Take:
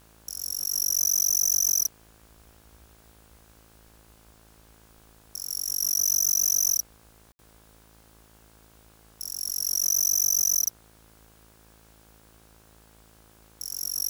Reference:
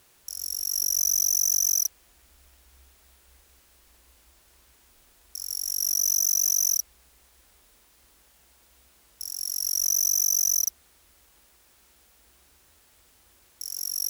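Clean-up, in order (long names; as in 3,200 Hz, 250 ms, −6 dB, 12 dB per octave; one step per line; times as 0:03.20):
hum removal 54.6 Hz, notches 31
ambience match 0:07.32–0:07.39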